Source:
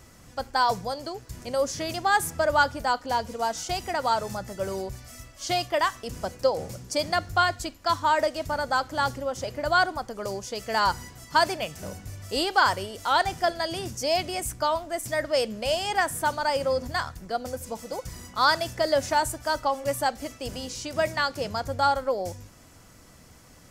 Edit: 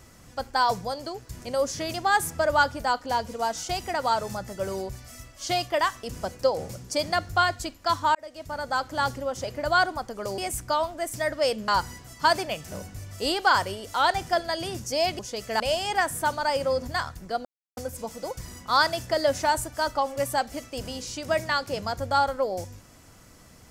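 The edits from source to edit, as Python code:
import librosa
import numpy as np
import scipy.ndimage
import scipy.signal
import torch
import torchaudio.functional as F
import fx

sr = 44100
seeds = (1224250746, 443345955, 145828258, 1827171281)

y = fx.edit(x, sr, fx.fade_in_span(start_s=8.15, length_s=1.02, curve='qsin'),
    fx.swap(start_s=10.38, length_s=0.41, other_s=14.3, other_length_s=1.3),
    fx.insert_silence(at_s=17.45, length_s=0.32), tone=tone)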